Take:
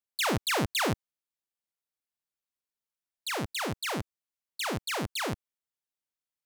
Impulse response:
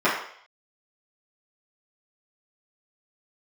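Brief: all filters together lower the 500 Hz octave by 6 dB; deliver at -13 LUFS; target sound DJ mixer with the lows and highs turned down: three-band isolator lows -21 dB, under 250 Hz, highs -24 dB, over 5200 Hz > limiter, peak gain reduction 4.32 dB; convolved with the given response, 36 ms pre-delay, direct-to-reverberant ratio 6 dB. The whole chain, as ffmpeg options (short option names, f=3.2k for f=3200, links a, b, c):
-filter_complex "[0:a]equalizer=f=500:t=o:g=-7,asplit=2[a][b];[1:a]atrim=start_sample=2205,adelay=36[c];[b][c]afir=irnorm=-1:irlink=0,volume=-25dB[d];[a][d]amix=inputs=2:normalize=0,acrossover=split=250 5200:gain=0.0891 1 0.0631[e][f][g];[e][f][g]amix=inputs=3:normalize=0,volume=21.5dB,alimiter=limit=0dB:level=0:latency=1"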